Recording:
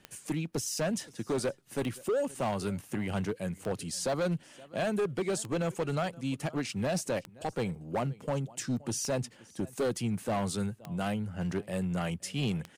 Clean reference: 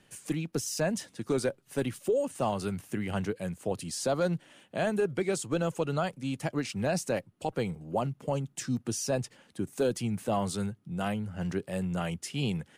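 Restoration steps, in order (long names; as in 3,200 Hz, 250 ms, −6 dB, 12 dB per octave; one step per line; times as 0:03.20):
clipped peaks rebuilt −25.5 dBFS
click removal
echo removal 522 ms −23.5 dB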